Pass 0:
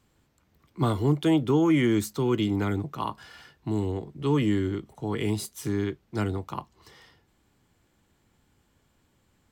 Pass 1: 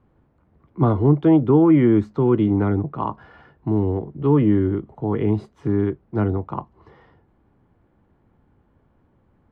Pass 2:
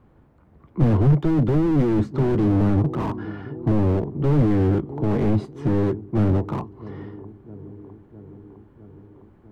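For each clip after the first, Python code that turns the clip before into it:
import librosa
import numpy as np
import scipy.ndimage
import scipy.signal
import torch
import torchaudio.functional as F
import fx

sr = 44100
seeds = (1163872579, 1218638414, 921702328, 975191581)

y1 = scipy.signal.sosfilt(scipy.signal.butter(2, 1100.0, 'lowpass', fs=sr, output='sos'), x)
y1 = F.gain(torch.from_numpy(y1), 7.5).numpy()
y2 = fx.echo_wet_lowpass(y1, sr, ms=657, feedback_pct=68, hz=570.0, wet_db=-22.0)
y2 = fx.slew_limit(y2, sr, full_power_hz=20.0)
y2 = F.gain(torch.from_numpy(y2), 5.5).numpy()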